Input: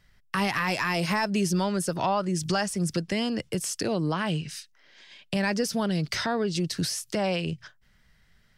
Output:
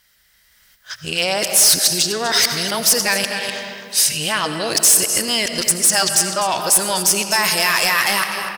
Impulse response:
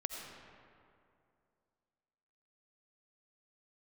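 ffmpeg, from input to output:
-filter_complex "[0:a]areverse,aecho=1:1:250:0.224,dynaudnorm=f=250:g=7:m=13dB,asplit=2[a][b];[b]asoftclip=type=tanh:threshold=-15dB,volume=-10.5dB[c];[a][c]amix=inputs=2:normalize=0,highpass=50,asplit=2[d][e];[1:a]atrim=start_sample=2205[f];[e][f]afir=irnorm=-1:irlink=0,volume=1dB[g];[d][g]amix=inputs=2:normalize=0,acompressor=threshold=-13dB:ratio=2,aemphasis=mode=production:type=75fm,asoftclip=type=hard:threshold=-4dB,equalizer=f=150:t=o:w=2.5:g=-14,volume=-4dB"

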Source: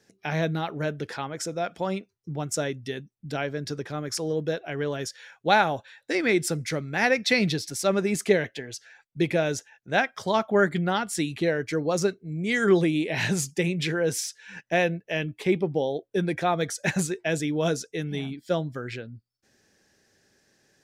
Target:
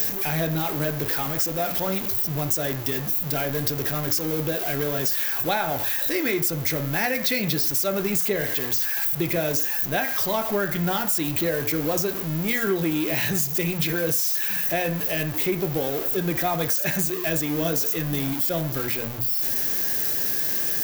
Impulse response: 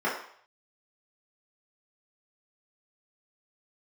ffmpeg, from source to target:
-filter_complex "[0:a]aeval=exprs='val(0)+0.5*0.0447*sgn(val(0))':c=same,asplit=2[a][b];[1:a]atrim=start_sample=2205,asetrate=52920,aresample=44100[c];[b][c]afir=irnorm=-1:irlink=0,volume=-18.5dB[d];[a][d]amix=inputs=2:normalize=0,aexciter=amount=6.3:drive=1.5:freq=12k,highshelf=f=6.4k:g=7.5,bandreject=f=60:t=h:w=6,bandreject=f=120:t=h:w=6,bandreject=f=180:t=h:w=6,bandreject=f=240:t=h:w=6,bandreject=f=300:t=h:w=6,acompressor=threshold=-20dB:ratio=6"

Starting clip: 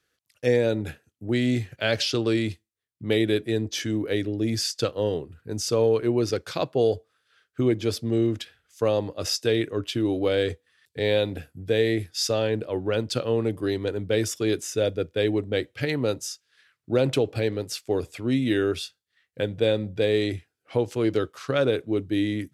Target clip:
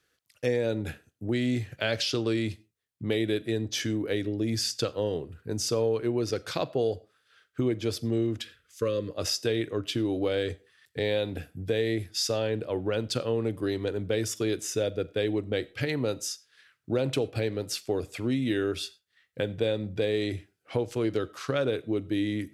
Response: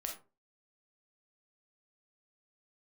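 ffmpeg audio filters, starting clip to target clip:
-filter_complex "[0:a]acompressor=threshold=-30dB:ratio=2,asettb=1/sr,asplit=3[a][b][c];[a]atrim=end=8.414[d];[b]atrim=start=8.41:end=9.11,asetpts=PTS-STARTPTS,afade=t=in:d=0.004:c=qsin,afade=t=out:st=0.696:d=0.004:c=qsin,asuperstop=centerf=780:order=12:qfactor=1.8[e];[c]atrim=start=9.106[f];[d][e]acrossfade=d=0.004:c1=hsin:c2=qsin[g];[g][f]acrossfade=d=0.004:c1=qsin:c2=hsin,asplit=2[h][i];[1:a]atrim=start_sample=2205,afade=t=out:st=0.23:d=0.01,atrim=end_sample=10584,adelay=44[j];[i][j]afir=irnorm=-1:irlink=0,volume=-19dB[k];[h][k]amix=inputs=2:normalize=0,volume=1.5dB"

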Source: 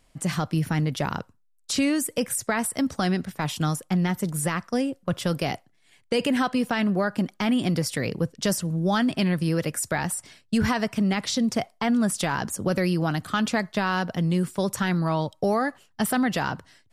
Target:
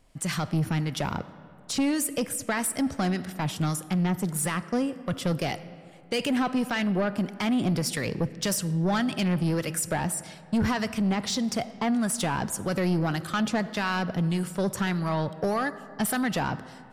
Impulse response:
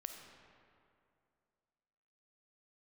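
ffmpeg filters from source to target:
-filter_complex "[0:a]acrossover=split=1100[a][b];[a]aeval=exprs='val(0)*(1-0.5/2+0.5/2*cos(2*PI*1.7*n/s))':c=same[c];[b]aeval=exprs='val(0)*(1-0.5/2-0.5/2*cos(2*PI*1.7*n/s))':c=same[d];[c][d]amix=inputs=2:normalize=0,asplit=2[e][f];[1:a]atrim=start_sample=2205[g];[f][g]afir=irnorm=-1:irlink=0,volume=-5.5dB[h];[e][h]amix=inputs=2:normalize=0,asoftclip=type=tanh:threshold=-19.5dB"

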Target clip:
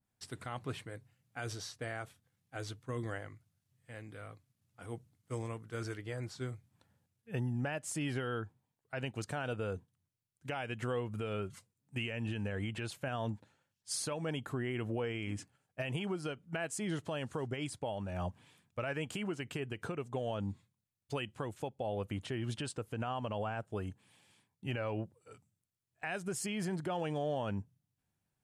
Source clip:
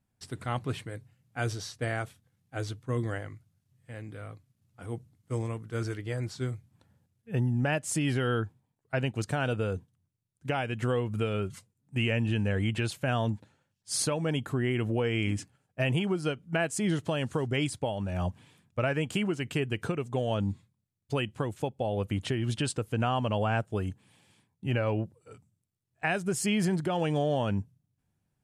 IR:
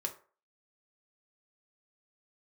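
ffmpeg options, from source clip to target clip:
-af "lowshelf=f=440:g=-6.5,alimiter=level_in=1dB:limit=-24dB:level=0:latency=1:release=93,volume=-1dB,adynamicequalizer=threshold=0.00251:dfrequency=1700:dqfactor=0.7:tfrequency=1700:tqfactor=0.7:attack=5:release=100:ratio=0.375:range=2.5:mode=cutabove:tftype=highshelf,volume=-2dB"

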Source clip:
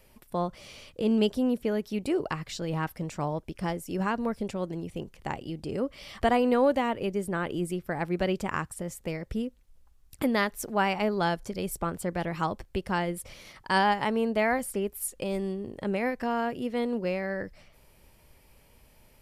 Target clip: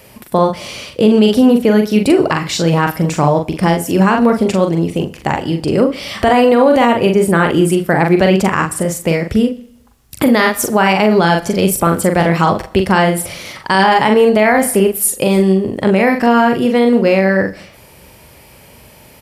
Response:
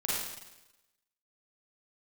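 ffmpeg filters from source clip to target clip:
-filter_complex "[0:a]highpass=80,asplit=2[a][b];[b]adelay=42,volume=-5dB[c];[a][c]amix=inputs=2:normalize=0,aecho=1:1:74:0.0708,asplit=2[d][e];[1:a]atrim=start_sample=2205,asetrate=61740,aresample=44100,adelay=52[f];[e][f]afir=irnorm=-1:irlink=0,volume=-24.5dB[g];[d][g]amix=inputs=2:normalize=0,alimiter=level_in=19dB:limit=-1dB:release=50:level=0:latency=1,volume=-1dB"

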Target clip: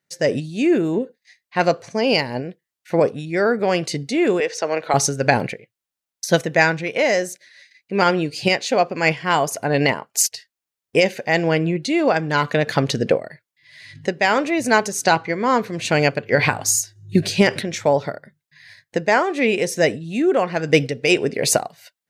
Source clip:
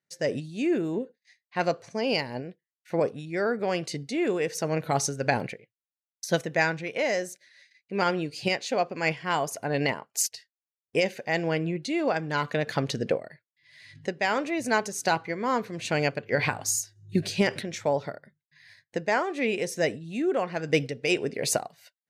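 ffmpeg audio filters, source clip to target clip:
-filter_complex "[0:a]asettb=1/sr,asplit=3[a][b][c];[a]atrim=end=4.404[d];[b]atrim=start=4.4:end=4.94,asetpts=PTS-STARTPTS,afade=t=in:d=0.004:c=qsin,afade=t=out:st=0.536:d=0.004:c=qsin,acrossover=split=350 6900:gain=0.0794 1 0.0708[e][f][g];[e][f][g]amix=inputs=3:normalize=0[h];[c]atrim=start=4.936[i];[d][h]acrossfade=d=0.004:c1=hsin:c2=qsin[j];[j][i]acrossfade=d=0.004:c1=qsin:c2=hsin,asettb=1/sr,asplit=3[k][l][m];[k]atrim=end=15.044[n];[l]atrim=start=15.04:end=15.59,asetpts=PTS-STARTPTS,afade=t=in:d=0.004:c=qsin,afade=t=out:st=0.546:d=0.004:c=qsin,lowpass=f=8.7k:w=0.5412,lowpass=f=8.7k:w=1.3066[o];[m]atrim=start=15.586[p];[n][o]acrossfade=d=0.004:c1=hsin:c2=qsin[q];[q][p]acrossfade=d=0.004:c1=qsin:c2=hsin,volume=8.5dB"

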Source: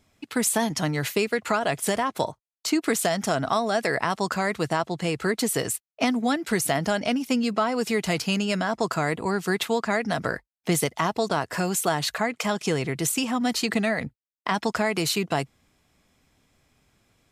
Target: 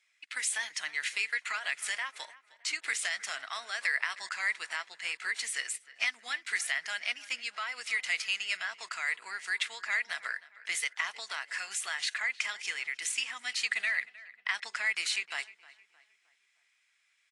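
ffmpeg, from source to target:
-filter_complex "[0:a]highpass=f=2k:t=q:w=2.8,asplit=2[a][b];[b]adelay=310,lowpass=f=2.8k:p=1,volume=-18dB,asplit=2[c][d];[d]adelay=310,lowpass=f=2.8k:p=1,volume=0.45,asplit=2[e][f];[f]adelay=310,lowpass=f=2.8k:p=1,volume=0.45,asplit=2[g][h];[h]adelay=310,lowpass=f=2.8k:p=1,volume=0.45[i];[c][e][g][i]amix=inputs=4:normalize=0[j];[a][j]amix=inputs=2:normalize=0,volume=-7dB" -ar 22050 -c:a aac -b:a 48k

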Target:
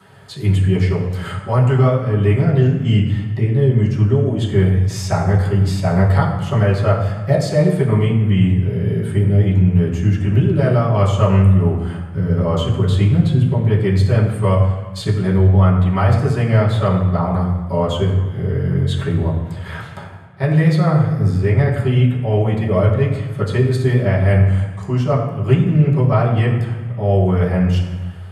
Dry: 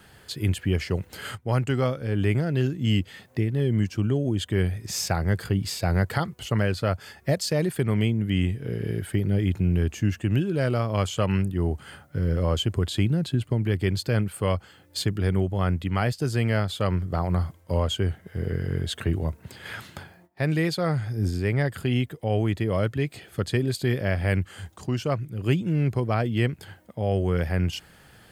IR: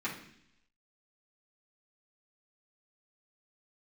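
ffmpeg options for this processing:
-filter_complex "[0:a]highpass=92[a];[1:a]atrim=start_sample=2205,asetrate=22932,aresample=44100[b];[a][b]afir=irnorm=-1:irlink=0,volume=-1.5dB"

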